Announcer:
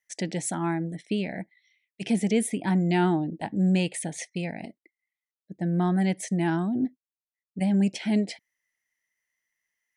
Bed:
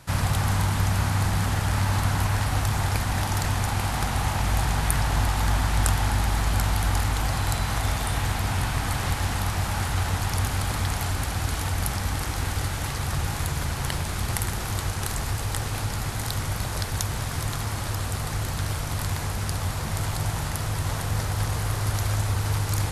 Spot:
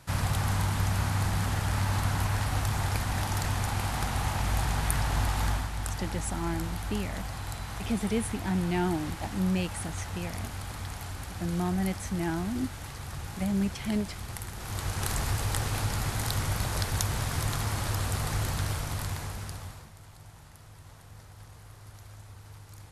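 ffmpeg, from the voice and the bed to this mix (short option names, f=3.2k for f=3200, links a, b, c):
-filter_complex "[0:a]adelay=5800,volume=-5.5dB[a];[1:a]volume=5.5dB,afade=t=out:st=5.46:d=0.24:silence=0.446684,afade=t=in:st=14.54:d=0.57:silence=0.316228,afade=t=out:st=18.44:d=1.48:silence=0.0841395[b];[a][b]amix=inputs=2:normalize=0"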